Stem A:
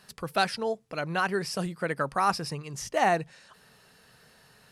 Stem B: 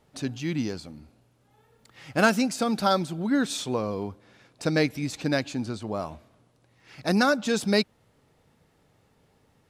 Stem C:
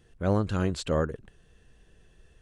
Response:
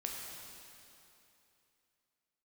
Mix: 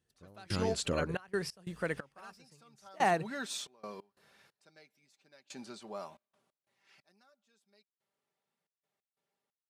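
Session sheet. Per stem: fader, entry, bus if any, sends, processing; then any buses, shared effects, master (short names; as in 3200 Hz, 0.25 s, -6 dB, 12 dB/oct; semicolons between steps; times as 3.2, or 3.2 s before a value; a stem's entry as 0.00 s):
-4.5 dB, 0.00 s, no send, gate -48 dBFS, range -8 dB
6.53 s -8.5 dB -> 7.28 s -20 dB, 0.00 s, no send, HPF 720 Hz 6 dB/oct; comb 5.1 ms, depth 57%
+2.5 dB, 0.00 s, no send, high shelf 5200 Hz +8 dB; compressor 12:1, threshold -32 dBFS, peak gain reduction 13.5 dB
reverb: off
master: HPF 66 Hz; step gate "...xxxx.x.xx..." 90 bpm -24 dB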